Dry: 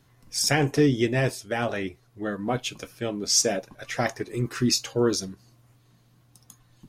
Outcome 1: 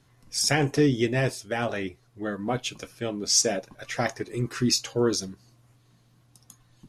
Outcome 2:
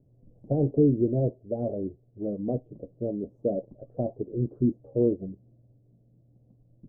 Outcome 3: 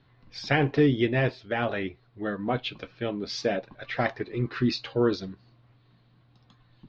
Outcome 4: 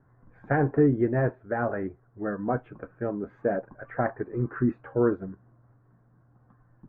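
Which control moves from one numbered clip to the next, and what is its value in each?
elliptic low-pass, frequency: 12000, 600, 4200, 1600 Hz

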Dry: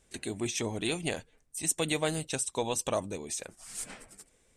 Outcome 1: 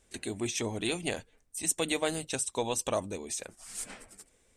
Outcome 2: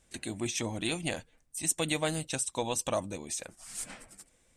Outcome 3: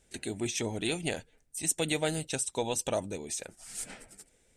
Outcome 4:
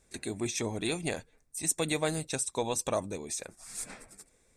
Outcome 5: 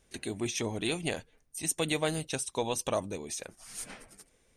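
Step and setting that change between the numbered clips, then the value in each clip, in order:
notch, frequency: 150, 420, 1100, 3000, 7700 Hz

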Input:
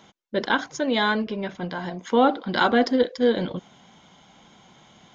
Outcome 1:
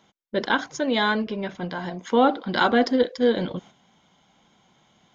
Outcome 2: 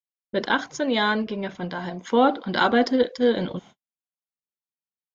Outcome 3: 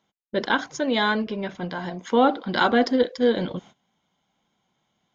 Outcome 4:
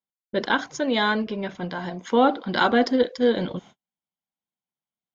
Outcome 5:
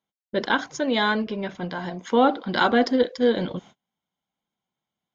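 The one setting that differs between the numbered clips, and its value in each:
gate, range: -8, -59, -20, -46, -34 dB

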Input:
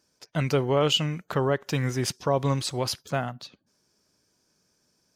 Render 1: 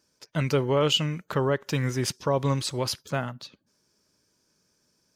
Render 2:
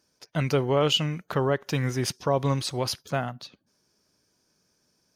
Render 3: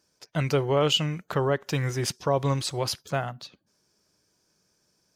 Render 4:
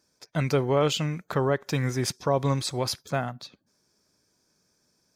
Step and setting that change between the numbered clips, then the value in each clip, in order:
notch, frequency: 730, 7600, 250, 2900 Hz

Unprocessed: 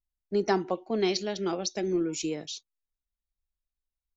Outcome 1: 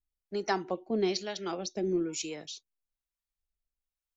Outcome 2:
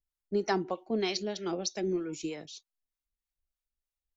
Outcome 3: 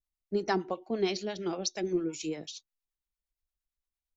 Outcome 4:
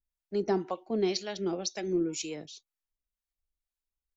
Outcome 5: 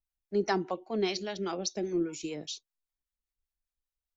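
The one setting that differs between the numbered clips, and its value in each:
harmonic tremolo, rate: 1.1, 3.2, 8.7, 2, 5 Hz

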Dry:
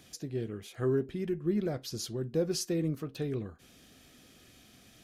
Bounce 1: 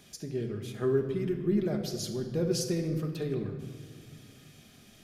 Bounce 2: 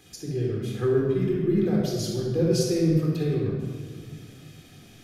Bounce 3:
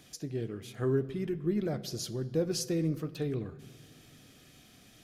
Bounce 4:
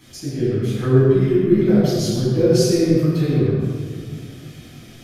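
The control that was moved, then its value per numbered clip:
shoebox room, microphone at: 1.3, 3.9, 0.41, 11 m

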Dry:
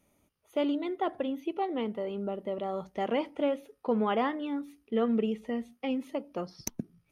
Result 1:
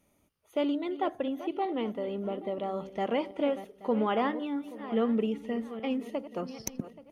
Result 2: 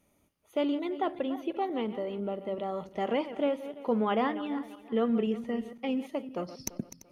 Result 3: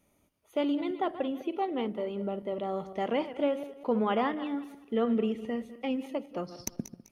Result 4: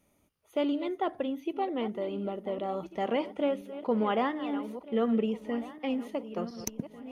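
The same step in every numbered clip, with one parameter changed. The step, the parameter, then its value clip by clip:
regenerating reverse delay, time: 0.414, 0.17, 0.101, 0.723 s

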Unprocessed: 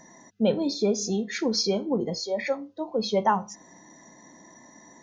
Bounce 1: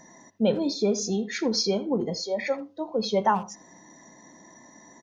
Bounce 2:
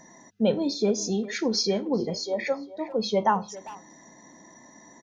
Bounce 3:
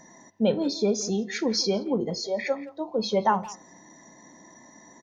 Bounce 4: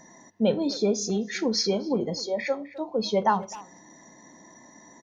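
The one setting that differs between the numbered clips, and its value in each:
speakerphone echo, time: 80, 400, 170, 260 ms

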